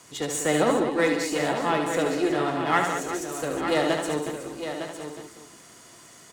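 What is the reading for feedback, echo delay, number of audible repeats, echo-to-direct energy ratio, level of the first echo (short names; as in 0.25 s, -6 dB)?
no steady repeat, 73 ms, 9, -1.5 dB, -6.0 dB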